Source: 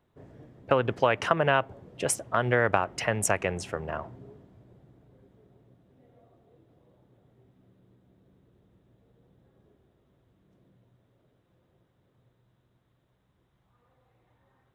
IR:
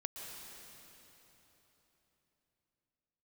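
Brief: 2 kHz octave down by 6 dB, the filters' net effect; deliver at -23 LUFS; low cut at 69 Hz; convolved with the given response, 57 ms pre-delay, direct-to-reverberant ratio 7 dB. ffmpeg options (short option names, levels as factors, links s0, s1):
-filter_complex "[0:a]highpass=69,equalizer=f=2000:t=o:g=-8.5,asplit=2[s0][s1];[1:a]atrim=start_sample=2205,adelay=57[s2];[s1][s2]afir=irnorm=-1:irlink=0,volume=0.501[s3];[s0][s3]amix=inputs=2:normalize=0,volume=1.78"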